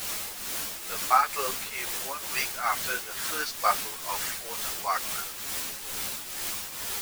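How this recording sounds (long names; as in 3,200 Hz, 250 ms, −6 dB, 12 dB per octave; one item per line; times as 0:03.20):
a quantiser's noise floor 6 bits, dither triangular
tremolo triangle 2.2 Hz, depth 65%
a shimmering, thickened sound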